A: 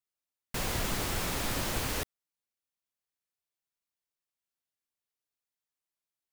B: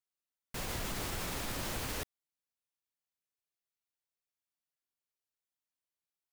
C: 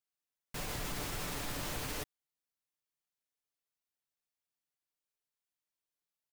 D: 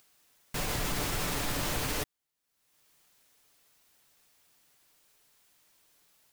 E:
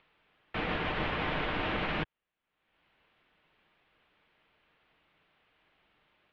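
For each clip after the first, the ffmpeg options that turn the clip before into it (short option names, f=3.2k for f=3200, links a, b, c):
-af "alimiter=limit=-23.5dB:level=0:latency=1:release=32,volume=-4.5dB"
-af "aecho=1:1:6.8:0.32,volume=-1.5dB"
-af "acompressor=mode=upward:threshold=-57dB:ratio=2.5,volume=7dB"
-af "highpass=f=250:t=q:w=0.5412,highpass=f=250:t=q:w=1.307,lowpass=f=3.4k:t=q:w=0.5176,lowpass=f=3.4k:t=q:w=0.7071,lowpass=f=3.4k:t=q:w=1.932,afreqshift=-270,volume=4dB"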